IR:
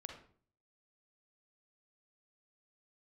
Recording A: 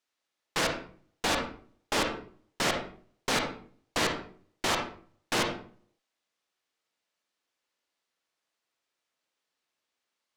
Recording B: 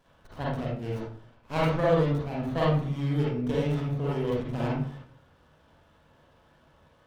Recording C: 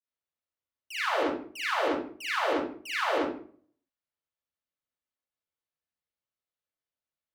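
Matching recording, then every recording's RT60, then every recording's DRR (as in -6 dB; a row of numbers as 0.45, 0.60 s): A; 0.50, 0.50, 0.50 s; 3.0, -6.0, -12.0 dB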